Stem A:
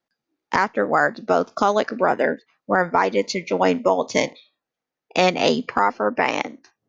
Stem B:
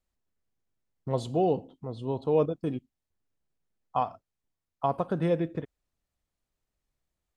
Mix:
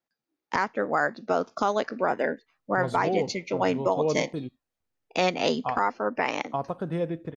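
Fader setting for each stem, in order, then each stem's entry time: -6.5, -2.5 dB; 0.00, 1.70 s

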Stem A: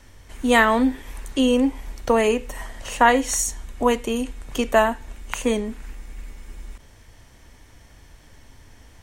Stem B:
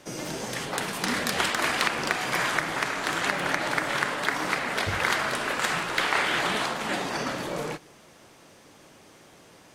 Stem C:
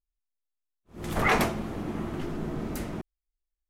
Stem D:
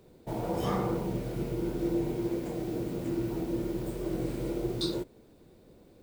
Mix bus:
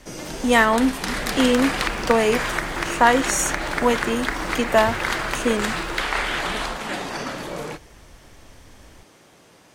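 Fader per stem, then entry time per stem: 0.0, +0.5, -12.0, -5.0 dB; 0.00, 0.00, 0.00, 0.95 s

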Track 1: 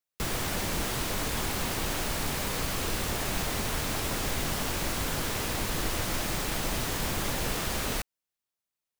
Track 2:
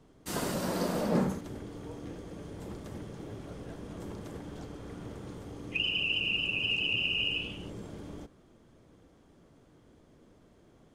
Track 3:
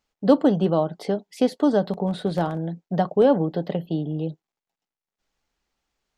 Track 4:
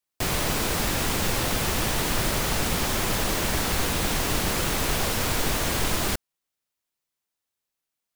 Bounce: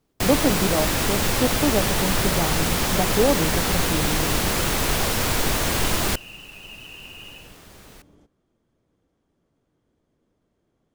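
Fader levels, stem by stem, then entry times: -16.5, -11.5, -3.0, +3.0 dB; 0.00, 0.00, 0.00, 0.00 s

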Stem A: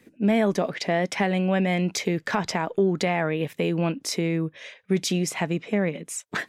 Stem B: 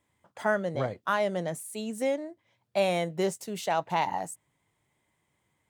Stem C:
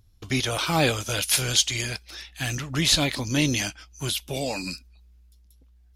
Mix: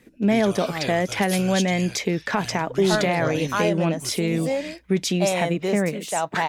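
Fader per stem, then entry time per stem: +1.5, +2.5, -9.0 dB; 0.00, 2.45, 0.00 s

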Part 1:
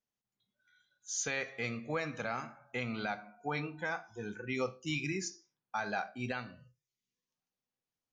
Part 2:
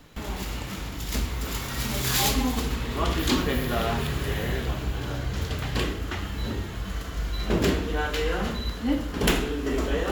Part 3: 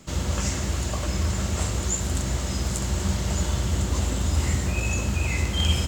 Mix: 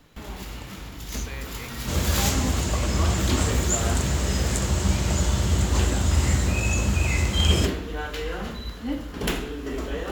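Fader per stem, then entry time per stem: -5.0, -4.0, +2.0 dB; 0.00, 0.00, 1.80 s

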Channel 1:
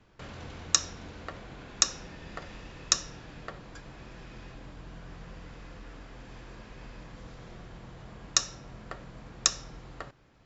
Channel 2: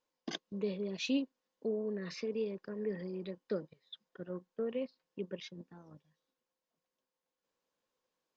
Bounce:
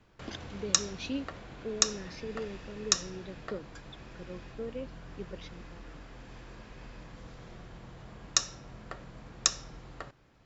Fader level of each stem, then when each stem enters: -1.5, -2.5 dB; 0.00, 0.00 s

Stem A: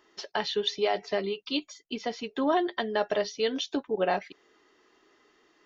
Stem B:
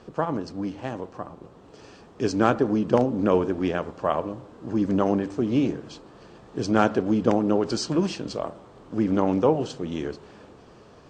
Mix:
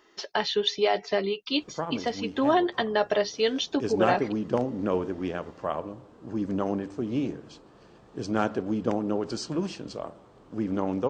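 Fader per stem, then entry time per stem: +3.0, -6.0 dB; 0.00, 1.60 s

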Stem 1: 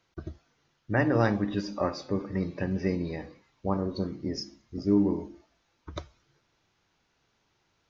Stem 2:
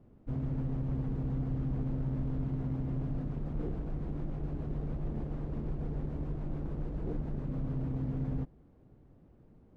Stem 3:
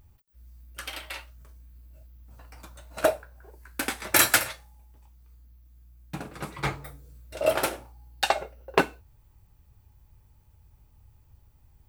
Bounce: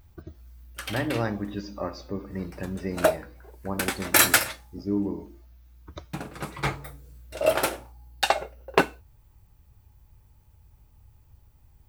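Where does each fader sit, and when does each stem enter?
-3.5 dB, off, +1.5 dB; 0.00 s, off, 0.00 s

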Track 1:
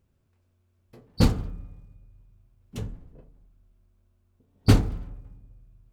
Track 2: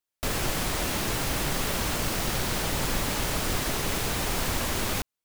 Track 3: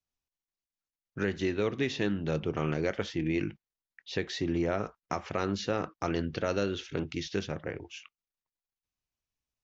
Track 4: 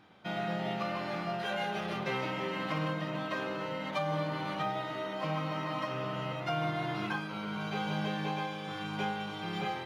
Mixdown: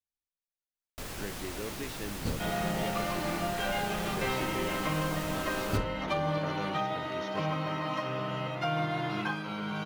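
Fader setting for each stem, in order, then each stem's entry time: -14.5, -12.0, -10.5, +2.0 dB; 1.05, 0.75, 0.00, 2.15 s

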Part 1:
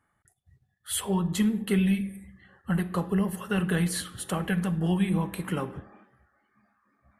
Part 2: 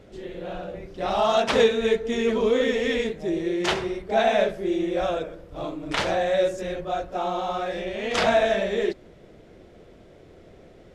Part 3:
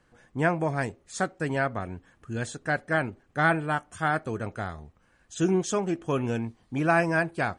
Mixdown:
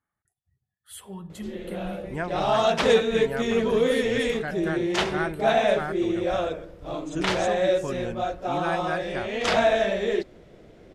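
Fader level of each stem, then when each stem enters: -12.5, -0.5, -6.5 dB; 0.00, 1.30, 1.75 s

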